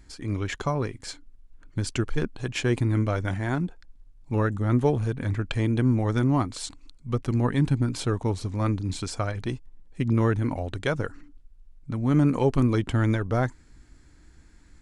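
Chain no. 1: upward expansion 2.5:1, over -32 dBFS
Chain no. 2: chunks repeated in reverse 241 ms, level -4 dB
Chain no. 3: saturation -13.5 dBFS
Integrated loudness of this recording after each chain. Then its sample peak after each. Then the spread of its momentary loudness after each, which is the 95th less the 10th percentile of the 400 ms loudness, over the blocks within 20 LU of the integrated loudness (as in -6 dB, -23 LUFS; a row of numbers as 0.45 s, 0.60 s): -31.0 LUFS, -25.5 LUFS, -27.5 LUFS; -10.5 dBFS, -8.0 dBFS, -14.5 dBFS; 18 LU, 12 LU, 9 LU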